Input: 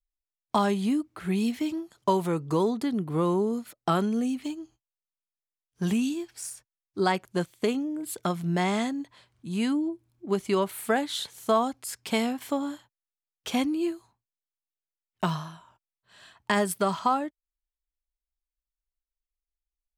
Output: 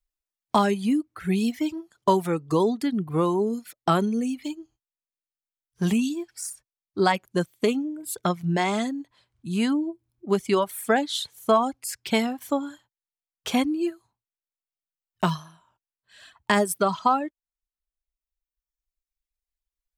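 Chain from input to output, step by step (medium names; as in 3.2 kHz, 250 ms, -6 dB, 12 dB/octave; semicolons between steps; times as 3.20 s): reverb removal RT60 1.8 s; trim +4 dB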